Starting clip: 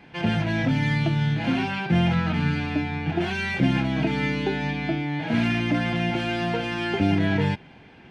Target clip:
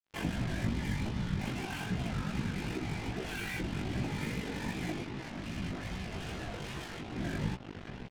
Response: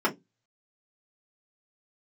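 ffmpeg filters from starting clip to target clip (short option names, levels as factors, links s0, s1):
-filter_complex "[0:a]highpass=62,aecho=1:1:526|1052|1578:0.133|0.0413|0.0128,acompressor=threshold=0.0398:ratio=5,tremolo=f=48:d=0.571,asettb=1/sr,asplit=3[s0][s1][s2];[s0]atrim=end=5.024[s3];[s1]atrim=start=5.02:end=7.16,asetpts=PTS-STARTPTS,afade=t=in:d=0.004:c=qsin,afade=t=out:st=2.136:d=0.004:c=qsin,aeval=exprs='(tanh(56.2*val(0)+0.4)-tanh(0.4))/56.2':c=same[s4];[s2]atrim=start=7.156[s5];[s3][s4]acrossfade=d=0.004:c1=hsin:c2=qsin[s6];[s6][s5]acrossfade=d=0.004:c1=qsin:c2=hsin,equalizer=f=120:w=3.8:g=11.5,afftfilt=real='hypot(re,im)*cos(2*PI*random(0))':imag='hypot(re,im)*sin(2*PI*random(1))':win_size=512:overlap=0.75,acrusher=bits=6:mix=0:aa=0.5,flanger=delay=15.5:depth=5:speed=2.5,volume=1.68"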